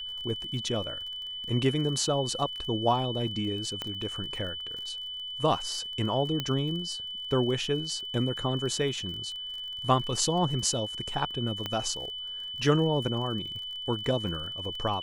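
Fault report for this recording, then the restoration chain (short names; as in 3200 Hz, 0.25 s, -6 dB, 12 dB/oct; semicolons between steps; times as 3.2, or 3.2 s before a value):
crackle 34/s -38 dBFS
tone 3000 Hz -35 dBFS
3.82 pop -18 dBFS
6.4 pop -16 dBFS
11.66 pop -17 dBFS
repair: de-click; notch 3000 Hz, Q 30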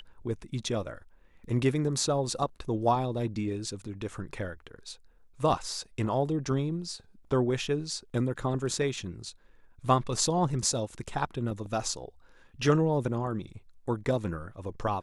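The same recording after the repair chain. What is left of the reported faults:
11.66 pop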